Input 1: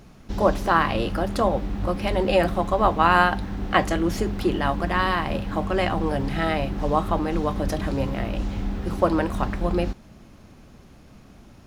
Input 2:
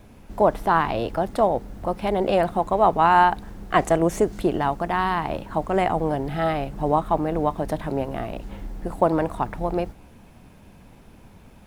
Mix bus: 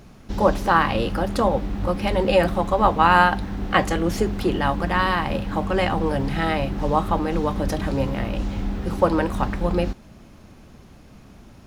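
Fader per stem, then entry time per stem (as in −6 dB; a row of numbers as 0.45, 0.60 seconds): +1.5, −10.0 decibels; 0.00, 0.00 seconds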